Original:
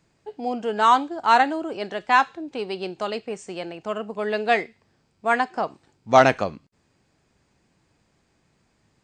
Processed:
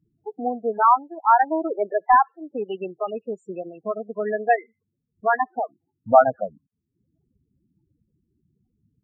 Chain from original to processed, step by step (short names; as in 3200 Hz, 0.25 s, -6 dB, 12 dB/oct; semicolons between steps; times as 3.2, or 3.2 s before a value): 1.5–2.28 overdrive pedal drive 17 dB, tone 1000 Hz, clips at -4 dBFS; transient shaper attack +4 dB, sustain -11 dB; loudest bins only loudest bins 8